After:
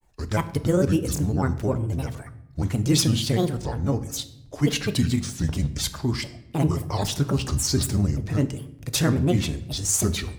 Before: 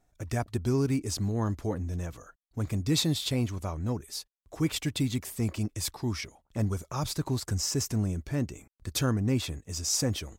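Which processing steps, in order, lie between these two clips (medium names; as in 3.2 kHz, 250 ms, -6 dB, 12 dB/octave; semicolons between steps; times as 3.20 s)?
granulator, spray 18 ms, pitch spread up and down by 7 st; simulated room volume 240 m³, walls mixed, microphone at 0.31 m; trim +7 dB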